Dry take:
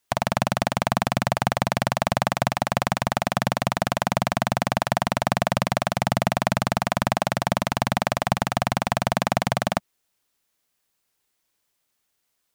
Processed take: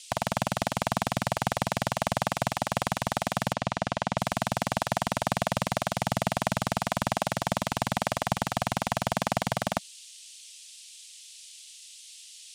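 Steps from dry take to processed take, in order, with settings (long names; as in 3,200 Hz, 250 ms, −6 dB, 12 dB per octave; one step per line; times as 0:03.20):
noise in a band 2,700–9,700 Hz −43 dBFS
0:03.53–0:04.18: high-frequency loss of the air 87 metres
level −5.5 dB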